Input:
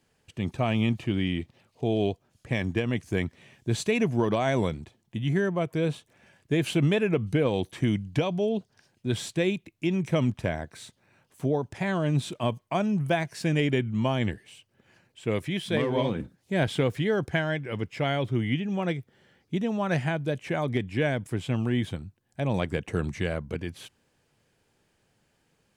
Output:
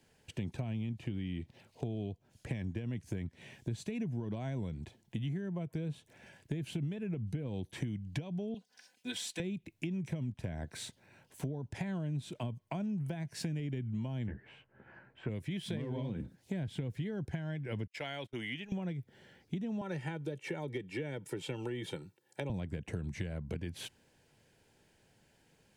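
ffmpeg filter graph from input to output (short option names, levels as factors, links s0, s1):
-filter_complex "[0:a]asettb=1/sr,asplit=3[s0][s1][s2];[s0]atrim=end=8.544[s3];[s1]atrim=start=8.54:end=9.4,asetpts=PTS-STARTPTS,afade=t=in:d=0.004:c=qsin,afade=t=out:st=0.856:d=0.004:c=qsin,highpass=f=1300:p=1,aecho=1:1:4:0.92,atrim=end_sample=37926[s4];[s2]atrim=start=9.396[s5];[s3][s4]acrossfade=d=0.004:c1=hsin:c2=qsin[s6];[s6][s5]acrossfade=d=0.004:c1=qsin:c2=hsin,asettb=1/sr,asplit=3[s7][s8][s9];[s7]atrim=end=14.274[s10];[s8]atrim=start=14.27:end=15.29,asetpts=PTS-STARTPTS,afade=t=in:d=0.004:c=qsin,afade=t=out:st=1.016:d=0.004:c=qsin,lowpass=f=1400:t=q:w=2.4,asplit=2[s11][s12];[s12]adelay=15,volume=0.631[s13];[s11][s13]amix=inputs=2:normalize=0,atrim=end_sample=44982[s14];[s9]atrim=start=15.286[s15];[s10][s14]acrossfade=d=0.004:c1=hsin:c2=qsin[s16];[s16][s15]acrossfade=d=0.004:c1=qsin:c2=hsin,asettb=1/sr,asplit=3[s17][s18][s19];[s17]atrim=end=17.874[s20];[s18]atrim=start=17.87:end=18.72,asetpts=PTS-STARTPTS,afade=t=in:d=0.004:c=qsin,afade=t=out:st=0.846:d=0.004:c=qsin,highpass=f=1200:p=1,agate=range=0.0251:threshold=0.00631:ratio=16:release=100:detection=peak[s21];[s19]atrim=start=18.716[s22];[s20][s21]acrossfade=d=0.004:c1=hsin:c2=qsin[s23];[s23][s22]acrossfade=d=0.004:c1=qsin:c2=hsin,asettb=1/sr,asplit=3[s24][s25][s26];[s24]atrim=end=19.814[s27];[s25]atrim=start=19.81:end=22.5,asetpts=PTS-STARTPTS,afade=t=in:d=0.004:c=qsin,afade=t=out:st=2.686:d=0.004:c=qsin,highpass=f=180:w=0.5412,highpass=f=180:w=1.3066,aecho=1:1:2.2:0.83,atrim=end_sample=118629[s28];[s26]atrim=start=22.496[s29];[s27][s28]acrossfade=d=0.004:c1=hsin:c2=qsin[s30];[s30][s29]acrossfade=d=0.004:c1=qsin:c2=hsin,acrossover=split=240[s31][s32];[s32]acompressor=threshold=0.0126:ratio=6[s33];[s31][s33]amix=inputs=2:normalize=0,bandreject=f=1200:w=5.5,acompressor=threshold=0.0158:ratio=6,volume=1.19"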